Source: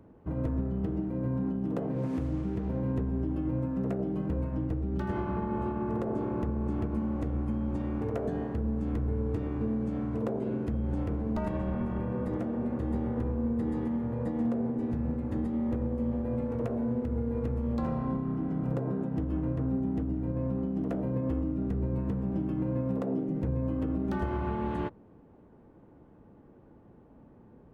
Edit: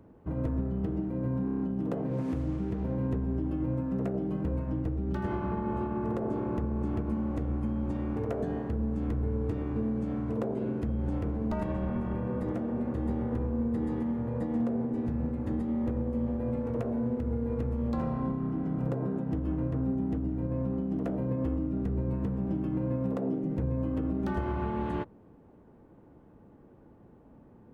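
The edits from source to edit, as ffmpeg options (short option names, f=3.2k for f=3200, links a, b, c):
-filter_complex "[0:a]asplit=6[a][b][c][d][e][f];[a]atrim=end=1.482[g];[b]atrim=start=1.448:end=1.482[h];[c]atrim=start=1.448:end=1.482[i];[d]atrim=start=1.448:end=1.482[j];[e]atrim=start=1.448:end=1.482[k];[f]atrim=start=1.448[l];[g][h]acrossfade=d=0.004:c1=hsin:c2=hsin[m];[m][i]acrossfade=d=0.004:c1=hsin:c2=hsin[n];[n][j]acrossfade=d=0.004:c1=hsin:c2=hsin[o];[o][k]acrossfade=d=0.004:c1=hsin:c2=hsin[p];[p][l]acrossfade=d=0.004:c1=hsin:c2=hsin"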